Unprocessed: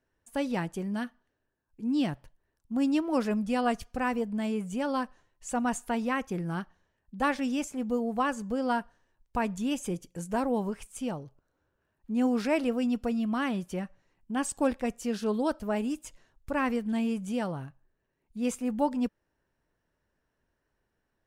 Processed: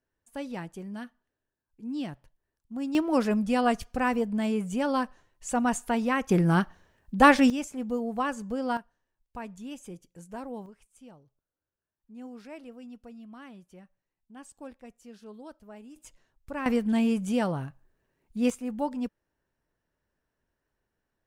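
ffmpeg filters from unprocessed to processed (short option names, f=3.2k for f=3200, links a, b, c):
-af "asetnsamples=n=441:p=0,asendcmd='2.95 volume volume 3dB;6.29 volume volume 10.5dB;7.5 volume volume -1dB;8.77 volume volume -10dB;10.66 volume volume -17dB;15.96 volume volume -5.5dB;16.66 volume volume 4.5dB;18.5 volume volume -3dB',volume=-6dB"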